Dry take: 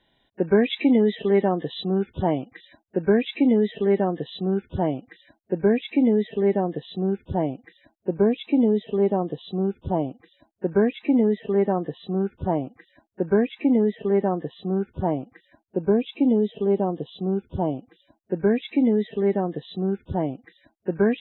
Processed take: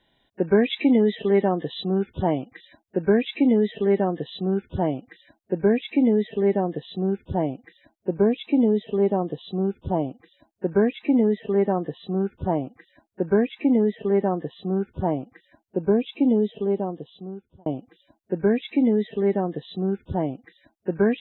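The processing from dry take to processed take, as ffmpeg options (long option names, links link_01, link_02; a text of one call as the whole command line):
ffmpeg -i in.wav -filter_complex "[0:a]asplit=2[link_01][link_02];[link_01]atrim=end=17.66,asetpts=PTS-STARTPTS,afade=type=out:start_time=16.42:duration=1.24[link_03];[link_02]atrim=start=17.66,asetpts=PTS-STARTPTS,afade=type=in:duration=0.004:curve=hsin[link_04];[link_03][link_04]concat=n=2:v=0:a=1" out.wav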